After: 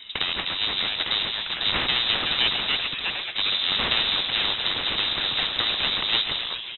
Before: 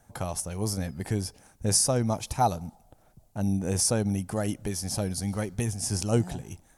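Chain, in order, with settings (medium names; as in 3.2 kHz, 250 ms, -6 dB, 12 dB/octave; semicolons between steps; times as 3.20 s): comb filter that takes the minimum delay 1.1 ms; frequency-shifting echo 136 ms, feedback 57%, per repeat +120 Hz, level -16 dB; ever faster or slower copies 676 ms, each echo +3 st, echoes 3, each echo -6 dB; frequency inversion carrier 3.8 kHz; spectrum-flattening compressor 2:1; trim +3.5 dB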